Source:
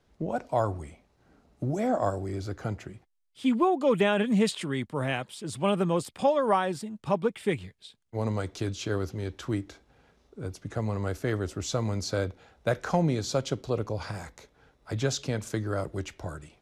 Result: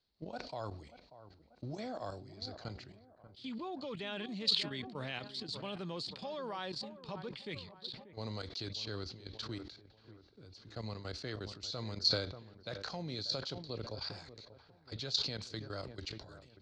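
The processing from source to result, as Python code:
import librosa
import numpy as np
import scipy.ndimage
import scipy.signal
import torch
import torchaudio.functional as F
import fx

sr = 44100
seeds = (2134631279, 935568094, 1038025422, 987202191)

p1 = fx.ladder_lowpass(x, sr, hz=4600.0, resonance_pct=80)
p2 = fx.high_shelf(p1, sr, hz=3100.0, db=10.0)
p3 = fx.level_steps(p2, sr, step_db=14)
p4 = p3 + fx.echo_wet_lowpass(p3, sr, ms=587, feedback_pct=45, hz=1500.0, wet_db=-14.5, dry=0)
p5 = fx.sustainer(p4, sr, db_per_s=76.0)
y = p5 * 10.0 ** (1.0 / 20.0)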